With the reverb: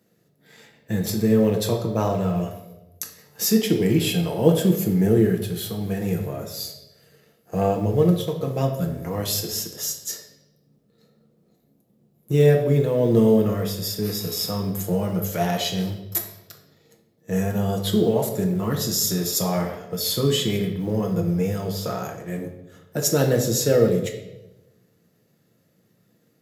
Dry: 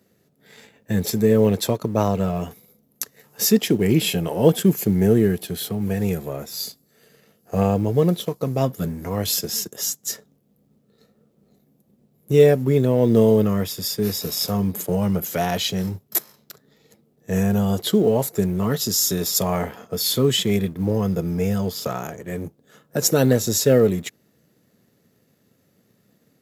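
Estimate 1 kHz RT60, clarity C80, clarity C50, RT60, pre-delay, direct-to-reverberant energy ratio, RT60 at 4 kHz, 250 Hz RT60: 0.85 s, 10.0 dB, 7.5 dB, 1.0 s, 6 ms, 2.0 dB, 0.80 s, 1.1 s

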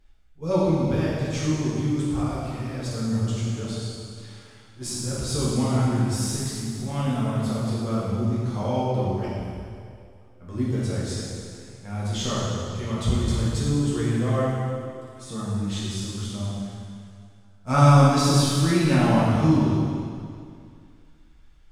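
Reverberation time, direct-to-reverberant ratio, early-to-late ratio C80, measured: 2.3 s, −8.5 dB, −0.5 dB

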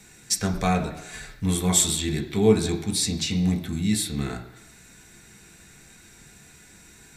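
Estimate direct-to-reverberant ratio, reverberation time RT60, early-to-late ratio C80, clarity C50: 1.5 dB, 0.95 s, 13.0 dB, 10.5 dB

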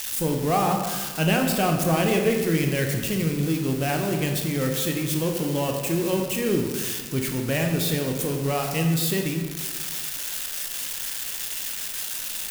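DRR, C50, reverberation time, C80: 2.0 dB, 5.0 dB, 1.4 s, 6.5 dB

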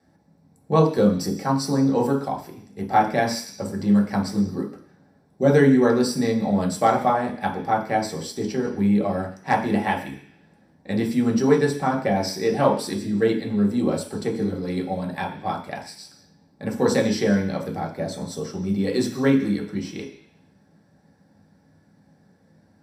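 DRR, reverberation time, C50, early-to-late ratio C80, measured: −2.0 dB, 0.50 s, 8.5 dB, 11.5 dB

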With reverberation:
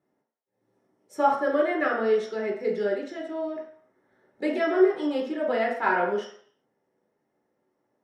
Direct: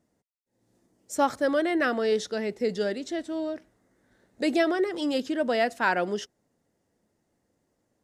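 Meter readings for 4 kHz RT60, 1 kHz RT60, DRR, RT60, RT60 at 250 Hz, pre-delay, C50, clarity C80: 0.55 s, 0.65 s, −3.0 dB, 0.60 s, 0.45 s, 3 ms, 4.5 dB, 9.0 dB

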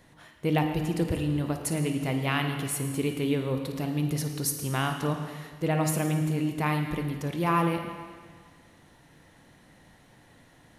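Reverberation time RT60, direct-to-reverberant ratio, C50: 1.7 s, 4.5 dB, 5.0 dB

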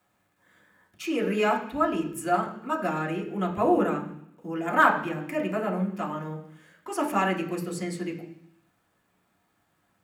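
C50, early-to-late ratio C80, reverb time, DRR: 9.5 dB, 11.5 dB, 0.70 s, −2.0 dB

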